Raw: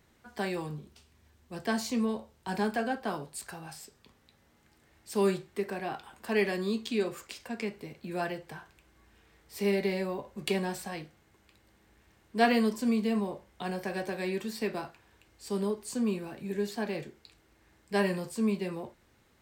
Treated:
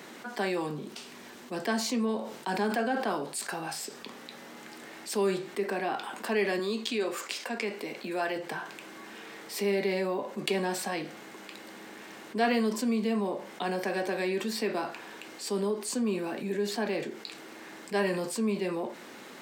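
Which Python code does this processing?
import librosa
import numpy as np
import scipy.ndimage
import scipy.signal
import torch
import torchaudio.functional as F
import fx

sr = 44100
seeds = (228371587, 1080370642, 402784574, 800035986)

y = fx.sustainer(x, sr, db_per_s=97.0, at=(2.19, 3.15))
y = fx.highpass(y, sr, hz=370.0, slope=6, at=(6.59, 8.36))
y = scipy.signal.sosfilt(scipy.signal.butter(4, 210.0, 'highpass', fs=sr, output='sos'), y)
y = fx.high_shelf(y, sr, hz=8900.0, db=-6.0)
y = fx.env_flatten(y, sr, amount_pct=50)
y = y * 10.0 ** (-3.0 / 20.0)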